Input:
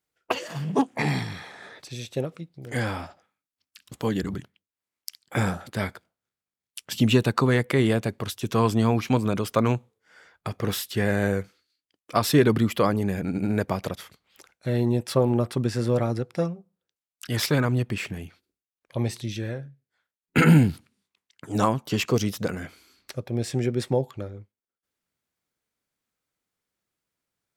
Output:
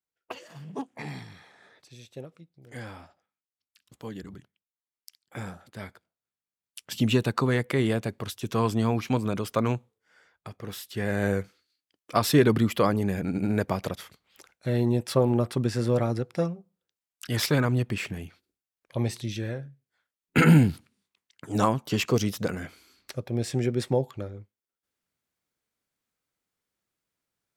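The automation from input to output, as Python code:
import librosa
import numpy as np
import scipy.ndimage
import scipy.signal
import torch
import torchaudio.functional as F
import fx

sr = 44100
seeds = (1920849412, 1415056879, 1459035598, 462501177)

y = fx.gain(x, sr, db=fx.line((5.68, -12.5), (6.92, -3.5), (9.74, -3.5), (10.65, -11.5), (11.31, -1.0)))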